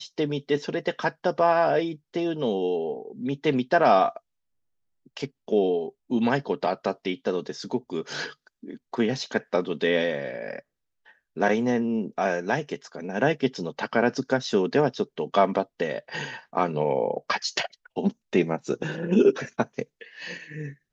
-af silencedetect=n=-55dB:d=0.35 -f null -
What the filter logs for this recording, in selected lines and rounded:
silence_start: 4.19
silence_end: 5.06 | silence_duration: 0.87
silence_start: 10.62
silence_end: 11.06 | silence_duration: 0.44